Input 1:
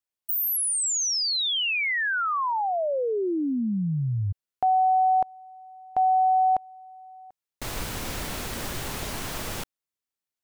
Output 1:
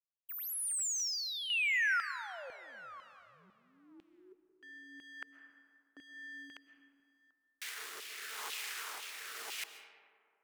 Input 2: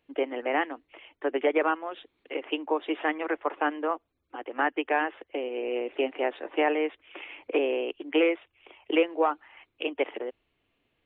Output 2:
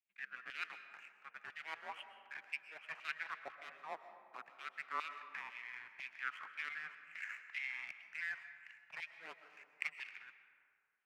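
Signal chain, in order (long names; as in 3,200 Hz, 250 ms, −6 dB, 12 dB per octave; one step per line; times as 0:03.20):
reversed playback
downward compressor 4 to 1, threshold −32 dBFS
reversed playback
power curve on the samples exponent 1.4
frequency shifter −470 Hz
auto-filter high-pass saw down 2 Hz 900–2,900 Hz
rotating-speaker cabinet horn 0.9 Hz
comb and all-pass reverb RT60 2.2 s, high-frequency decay 0.4×, pre-delay 85 ms, DRR 9.5 dB
level +2 dB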